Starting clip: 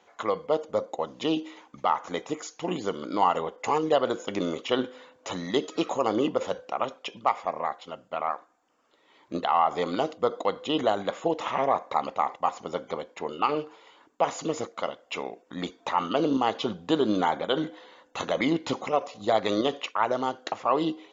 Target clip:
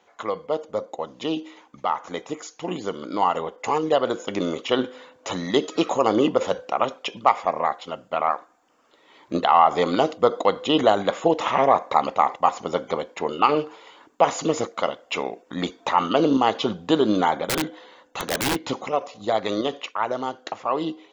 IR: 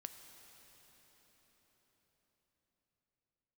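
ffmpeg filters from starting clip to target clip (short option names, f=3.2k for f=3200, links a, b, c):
-filter_complex "[0:a]dynaudnorm=f=740:g=13:m=8.5dB,asplit=3[a][b][c];[a]afade=t=out:st=17.47:d=0.02[d];[b]aeval=exprs='(mod(7.5*val(0)+1,2)-1)/7.5':c=same,afade=t=in:st=17.47:d=0.02,afade=t=out:st=18.54:d=0.02[e];[c]afade=t=in:st=18.54:d=0.02[f];[d][e][f]amix=inputs=3:normalize=0"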